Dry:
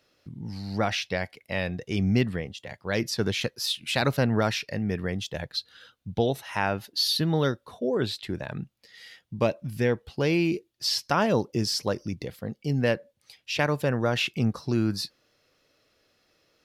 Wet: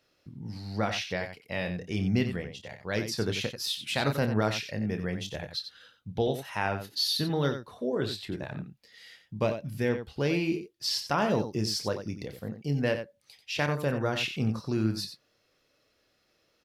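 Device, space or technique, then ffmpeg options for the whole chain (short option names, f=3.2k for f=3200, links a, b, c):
slapback doubling: -filter_complex "[0:a]asplit=3[a][b][c];[b]adelay=28,volume=-9dB[d];[c]adelay=90,volume=-9.5dB[e];[a][d][e]amix=inputs=3:normalize=0,volume=-4dB"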